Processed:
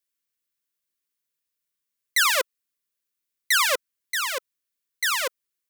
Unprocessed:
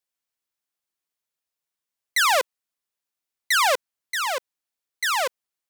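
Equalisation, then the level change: Butterworth band-stop 770 Hz, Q 1.6; treble shelf 11 kHz +6.5 dB; band-stop 1.3 kHz, Q 14; 0.0 dB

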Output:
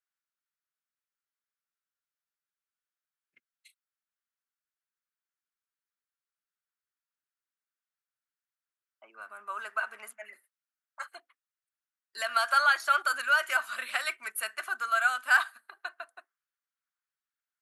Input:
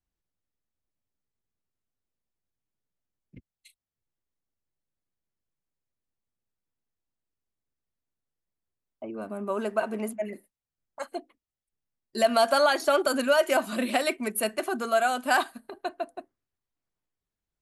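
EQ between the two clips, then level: resonant high-pass 1.4 kHz, resonance Q 3.3; -5.0 dB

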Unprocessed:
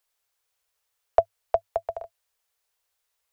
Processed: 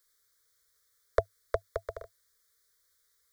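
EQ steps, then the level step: Butterworth band-stop 780 Hz, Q 1.1; Butterworth band-stop 2.7 kHz, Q 1.9; +6.5 dB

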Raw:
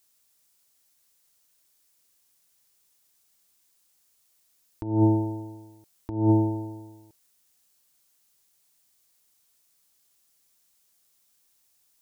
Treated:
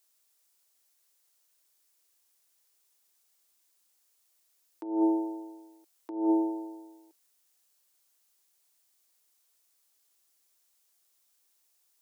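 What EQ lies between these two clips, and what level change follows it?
Chebyshev high-pass 310 Hz, order 4; -3.0 dB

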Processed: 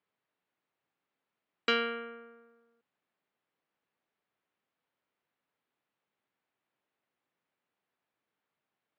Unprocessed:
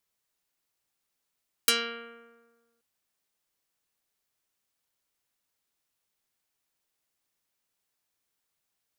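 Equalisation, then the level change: high-pass 150 Hz; brick-wall FIR low-pass 7.7 kHz; distance through air 470 m; +5.0 dB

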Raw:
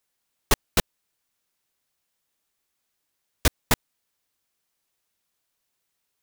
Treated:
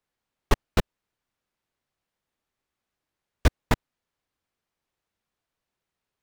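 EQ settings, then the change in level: low-pass 1.8 kHz 6 dB/octave; bass shelf 150 Hz +4.5 dB; 0.0 dB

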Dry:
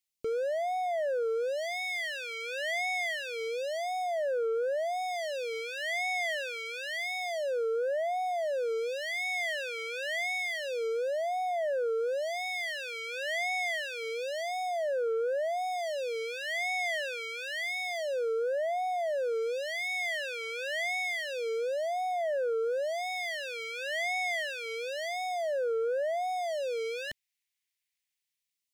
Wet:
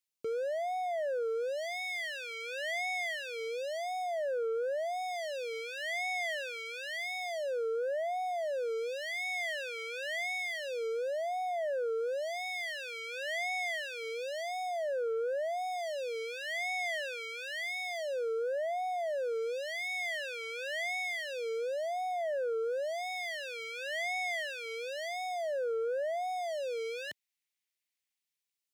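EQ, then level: high-pass 120 Hz; -3.0 dB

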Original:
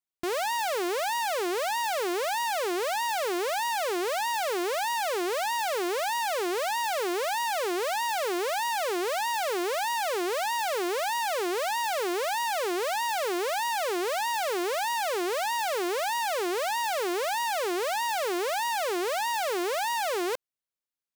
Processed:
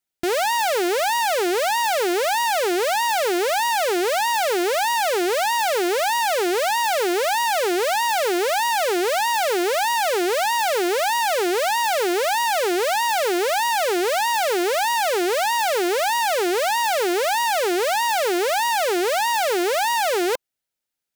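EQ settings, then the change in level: Butterworth band-stop 1.1 kHz, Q 5.6; +8.0 dB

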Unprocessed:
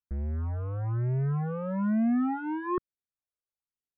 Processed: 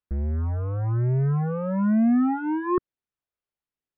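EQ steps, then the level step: distance through air 250 m; peaking EQ 350 Hz +2 dB; +5.5 dB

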